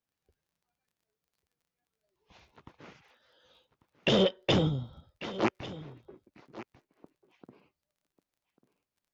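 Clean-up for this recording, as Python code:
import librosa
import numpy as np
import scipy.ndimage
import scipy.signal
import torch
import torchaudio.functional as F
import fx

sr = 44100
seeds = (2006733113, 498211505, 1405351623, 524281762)

y = fx.fix_declick_ar(x, sr, threshold=6.5)
y = fx.fix_echo_inverse(y, sr, delay_ms=1144, level_db=-16.5)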